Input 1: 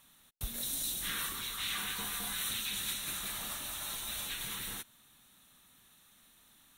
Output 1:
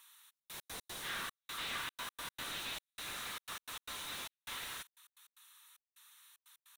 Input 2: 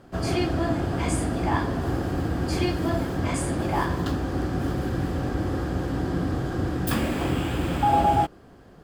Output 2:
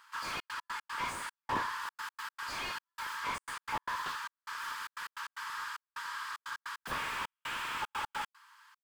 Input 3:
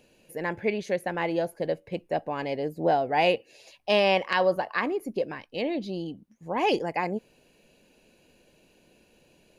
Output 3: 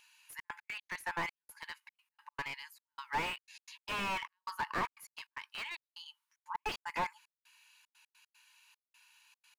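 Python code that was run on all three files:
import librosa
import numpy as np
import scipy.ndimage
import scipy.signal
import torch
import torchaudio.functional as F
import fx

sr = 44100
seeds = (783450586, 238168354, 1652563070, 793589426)

y = fx.brickwall_highpass(x, sr, low_hz=860.0)
y = fx.step_gate(y, sr, bpm=151, pattern='xxxx.x.x.xxxx..', floor_db=-60.0, edge_ms=4.5)
y = fx.slew_limit(y, sr, full_power_hz=30.0)
y = y * 10.0 ** (1.5 / 20.0)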